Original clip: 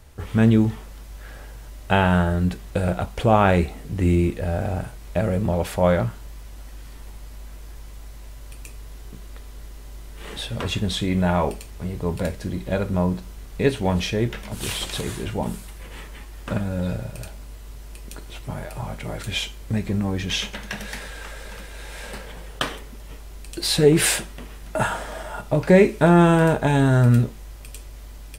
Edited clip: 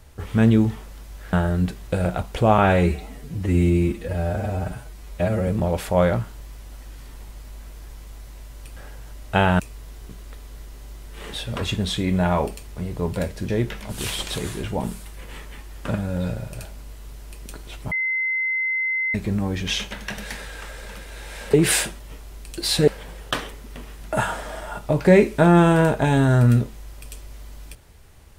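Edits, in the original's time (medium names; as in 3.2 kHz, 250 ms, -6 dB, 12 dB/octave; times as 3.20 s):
1.33–2.16 s: move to 8.63 s
3.41–5.34 s: stretch 1.5×
12.52–14.11 s: delete
18.54–19.77 s: bleep 2.06 kHz -20.5 dBFS
22.16–22.99 s: swap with 23.87–24.33 s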